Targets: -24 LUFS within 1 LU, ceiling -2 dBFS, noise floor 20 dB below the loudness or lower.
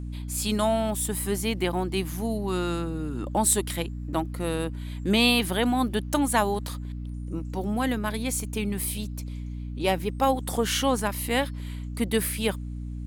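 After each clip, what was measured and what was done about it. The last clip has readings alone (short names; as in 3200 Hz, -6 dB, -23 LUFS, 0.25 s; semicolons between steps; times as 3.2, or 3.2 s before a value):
hum 60 Hz; harmonics up to 300 Hz; hum level -31 dBFS; loudness -27.0 LUFS; peak -7.5 dBFS; loudness target -24.0 LUFS
-> notches 60/120/180/240/300 Hz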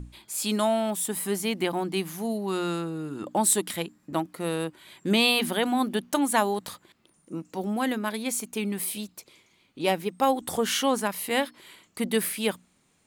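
hum none; loudness -27.0 LUFS; peak -8.5 dBFS; loudness target -24.0 LUFS
-> gain +3 dB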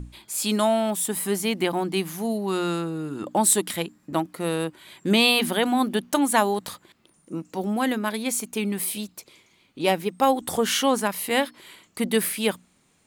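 loudness -24.0 LUFS; peak -5.5 dBFS; noise floor -64 dBFS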